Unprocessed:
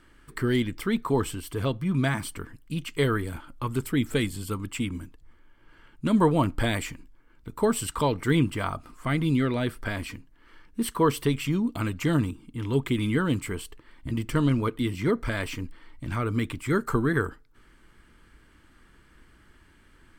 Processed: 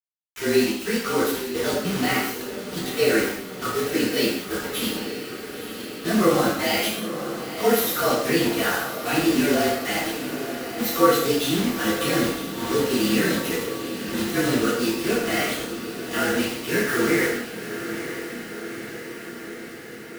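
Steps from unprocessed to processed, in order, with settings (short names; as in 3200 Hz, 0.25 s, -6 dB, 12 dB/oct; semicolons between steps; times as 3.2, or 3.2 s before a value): inharmonic rescaling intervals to 111%; HPF 350 Hz 12 dB/oct; notch 1000 Hz, Q 7.1; in parallel at +0.5 dB: level quantiser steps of 20 dB; on the sum: bit-crush 6-bit; diffused feedback echo 0.938 s, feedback 68%, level -10 dB; non-linear reverb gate 0.25 s falling, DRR -6.5 dB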